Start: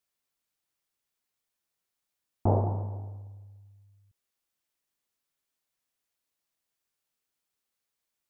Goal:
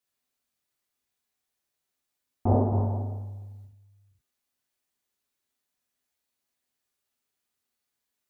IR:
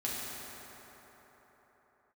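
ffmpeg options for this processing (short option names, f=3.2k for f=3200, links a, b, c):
-filter_complex "[0:a]asettb=1/sr,asplit=3[a][b][c];[a]atrim=end=2.724[d];[b]atrim=start=2.72:end=3.65,asetpts=PTS-STARTPTS,afade=t=in:d=0.004:c=qsin,afade=t=out:st=0.926:d=0.004:c=qsin,acontrast=54[e];[c]atrim=start=3.646[f];[d][e]acrossfade=d=0.004:c1=hsin:c2=qsin[g];[g][f]acrossfade=d=0.004:c1=qsin:c2=hsin[h];[1:a]atrim=start_sample=2205,atrim=end_sample=4410[i];[h][i]afir=irnorm=-1:irlink=0"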